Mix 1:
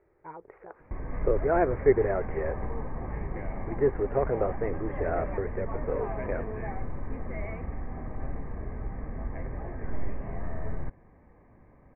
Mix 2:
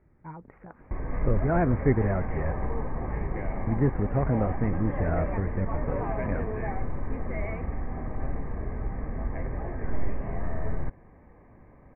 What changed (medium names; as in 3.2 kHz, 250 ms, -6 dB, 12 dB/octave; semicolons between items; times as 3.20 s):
speech: add resonant low shelf 300 Hz +10 dB, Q 3; background +3.5 dB